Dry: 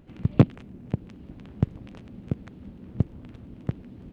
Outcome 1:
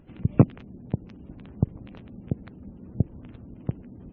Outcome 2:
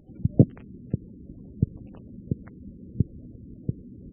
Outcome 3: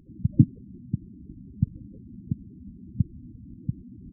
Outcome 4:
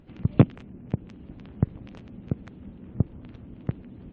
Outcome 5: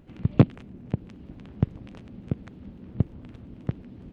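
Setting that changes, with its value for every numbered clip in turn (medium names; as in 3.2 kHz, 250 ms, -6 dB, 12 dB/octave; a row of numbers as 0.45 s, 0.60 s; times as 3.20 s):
spectral gate, under each frame's peak: -35 dB, -20 dB, -10 dB, -45 dB, -60 dB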